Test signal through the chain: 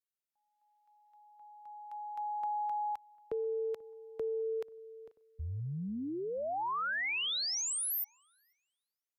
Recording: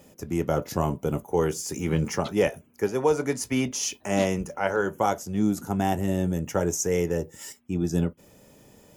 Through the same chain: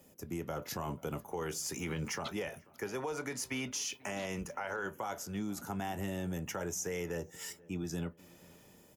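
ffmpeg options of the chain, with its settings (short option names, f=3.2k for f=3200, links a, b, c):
-filter_complex "[0:a]equalizer=f=14k:t=o:w=0.87:g=7.5,acrossover=split=110|870|5300[a][b][c][d];[c]dynaudnorm=f=140:g=7:m=8.5dB[e];[a][b][e][d]amix=inputs=4:normalize=0,alimiter=limit=-17.5dB:level=0:latency=1:release=60,acompressor=threshold=-24dB:ratio=6,asplit=2[f][g];[g]adelay=488,lowpass=f=1.7k:p=1,volume=-23dB,asplit=2[h][i];[i]adelay=488,lowpass=f=1.7k:p=1,volume=0.48,asplit=2[j][k];[k]adelay=488,lowpass=f=1.7k:p=1,volume=0.48[l];[f][h][j][l]amix=inputs=4:normalize=0,volume=-9dB"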